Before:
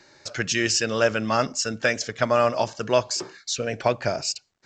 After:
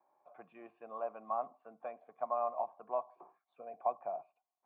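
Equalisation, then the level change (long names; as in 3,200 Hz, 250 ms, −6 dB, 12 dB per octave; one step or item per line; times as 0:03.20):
formant resonators in series a
Butterworth high-pass 160 Hz 36 dB per octave
high-frequency loss of the air 97 metres
−2.5 dB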